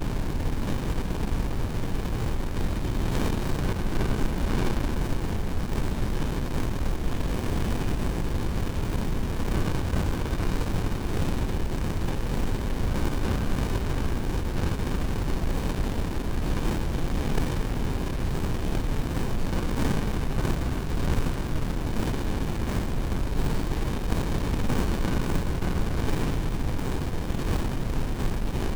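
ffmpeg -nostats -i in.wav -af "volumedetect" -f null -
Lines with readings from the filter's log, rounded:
mean_volume: -25.1 dB
max_volume: -9.8 dB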